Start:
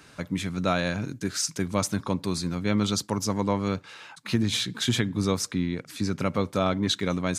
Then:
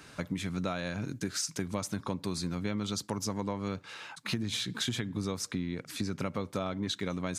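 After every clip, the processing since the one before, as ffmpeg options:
-af "acompressor=threshold=-30dB:ratio=6"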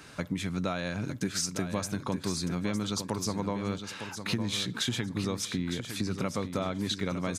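-af "aecho=1:1:908|1816|2724:0.355|0.0674|0.0128,volume=2dB"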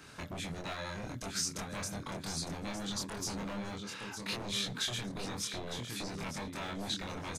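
-filter_complex "[0:a]acrossover=split=2100[a][b];[a]aeval=exprs='0.0266*(abs(mod(val(0)/0.0266+3,4)-2)-1)':c=same[c];[c][b]amix=inputs=2:normalize=0,asplit=2[d][e];[e]adelay=25,volume=-2dB[f];[d][f]amix=inputs=2:normalize=0,volume=-5dB"

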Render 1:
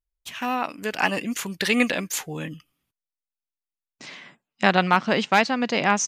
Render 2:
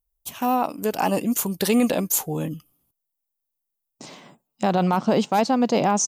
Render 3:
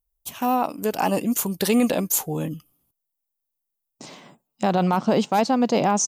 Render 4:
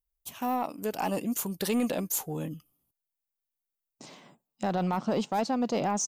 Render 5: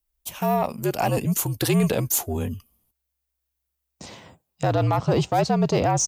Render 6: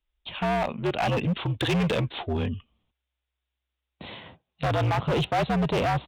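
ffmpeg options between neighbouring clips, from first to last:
-af "firequalizer=gain_entry='entry(810,0);entry(1800,-18);entry(3000,-15);entry(13000,-8)':delay=0.05:min_phase=1,alimiter=limit=-17dB:level=0:latency=1:release=20,aemphasis=mode=production:type=75kf,volume=5.5dB"
-af anull
-af "asoftclip=type=tanh:threshold=-12dB,volume=-7dB"
-af "afreqshift=-64,volume=7.5dB"
-af "aresample=8000,aresample=44100,crystalizer=i=3.5:c=0,volume=21dB,asoftclip=hard,volume=-21dB"

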